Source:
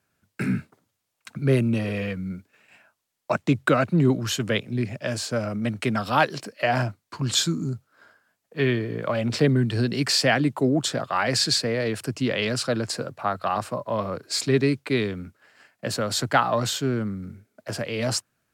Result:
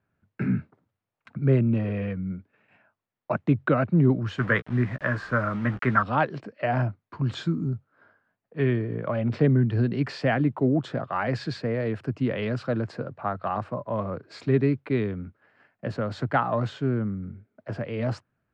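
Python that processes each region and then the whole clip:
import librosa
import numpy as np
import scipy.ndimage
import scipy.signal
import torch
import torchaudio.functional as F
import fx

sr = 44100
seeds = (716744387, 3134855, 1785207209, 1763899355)

y = fx.chain(x, sr, fx.band_shelf(hz=1400.0, db=13.5, octaves=1.2),
    fx.quant_dither(seeds[0], bits=6, dither='none'),
    fx.doubler(ms=16.0, db=-11.0), at=(4.38, 6.03))
y = scipy.signal.sosfilt(scipy.signal.butter(2, 1900.0, 'lowpass', fs=sr, output='sos'), y)
y = fx.low_shelf(y, sr, hz=210.0, db=6.5)
y = y * 10.0 ** (-3.5 / 20.0)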